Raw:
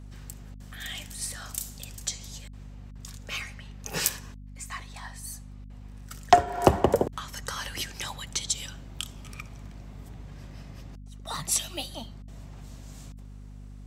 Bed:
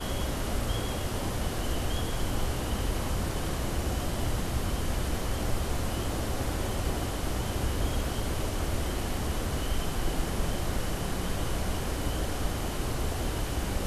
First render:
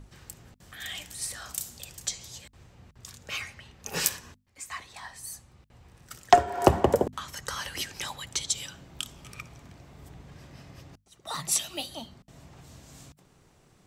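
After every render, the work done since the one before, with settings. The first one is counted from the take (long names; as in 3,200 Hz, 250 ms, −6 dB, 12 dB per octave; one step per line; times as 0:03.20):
mains-hum notches 50/100/150/200/250 Hz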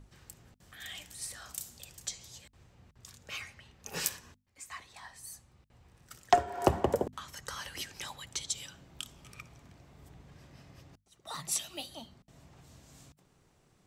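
level −6.5 dB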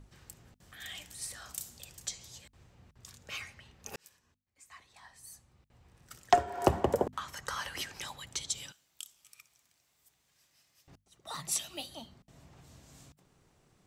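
0:03.96–0:06.13: fade in
0:06.98–0:08.00: parametric band 1,100 Hz +6 dB 2.1 octaves
0:08.72–0:10.88: first-order pre-emphasis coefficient 0.97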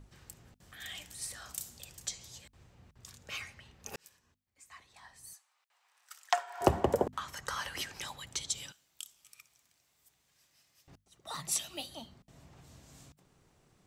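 0:05.33–0:06.61: high-pass filter 860 Hz 24 dB per octave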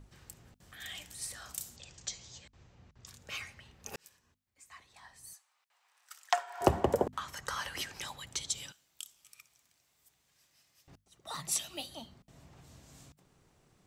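0:01.76–0:03.07: Butterworth low-pass 7,400 Hz 48 dB per octave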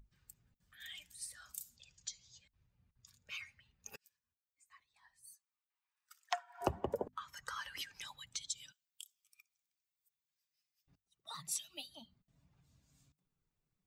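spectral dynamics exaggerated over time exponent 1.5
downward compressor 1.5 to 1, threshold −45 dBFS, peak gain reduction 9.5 dB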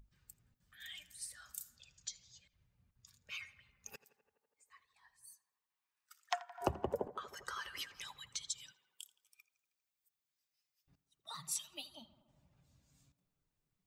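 tape delay 82 ms, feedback 83%, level −16 dB, low-pass 2,500 Hz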